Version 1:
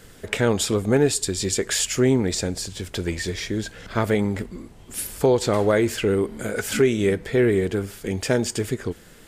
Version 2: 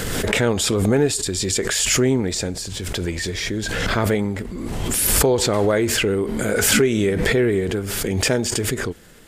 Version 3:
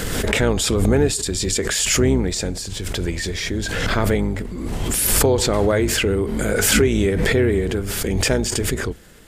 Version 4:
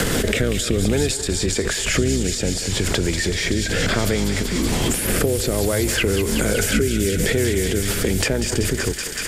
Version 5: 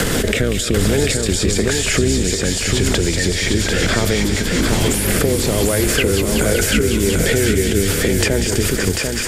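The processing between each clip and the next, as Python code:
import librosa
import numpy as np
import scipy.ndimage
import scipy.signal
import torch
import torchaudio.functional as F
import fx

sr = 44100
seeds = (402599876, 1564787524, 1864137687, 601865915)

y1 = fx.pre_swell(x, sr, db_per_s=21.0)
y2 = fx.octave_divider(y1, sr, octaves=2, level_db=-2.0)
y3 = fx.rotary_switch(y2, sr, hz=0.6, then_hz=7.5, switch_at_s=7.34)
y3 = fx.echo_thinned(y3, sr, ms=189, feedback_pct=84, hz=1000.0, wet_db=-9.5)
y3 = fx.band_squash(y3, sr, depth_pct=100)
y4 = y3 + 10.0 ** (-4.5 / 20.0) * np.pad(y3, (int(743 * sr / 1000.0), 0))[:len(y3)]
y4 = y4 * 10.0 ** (2.5 / 20.0)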